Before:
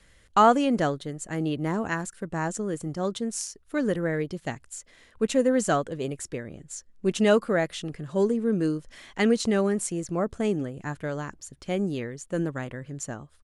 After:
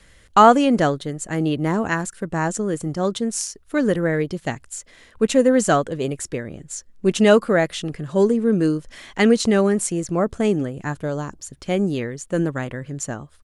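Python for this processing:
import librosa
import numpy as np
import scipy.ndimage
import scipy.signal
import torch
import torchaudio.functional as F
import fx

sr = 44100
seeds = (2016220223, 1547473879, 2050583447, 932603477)

y = fx.peak_eq(x, sr, hz=2000.0, db=-9.5, octaves=0.98, at=(10.94, 11.41))
y = y * 10.0 ** (6.5 / 20.0)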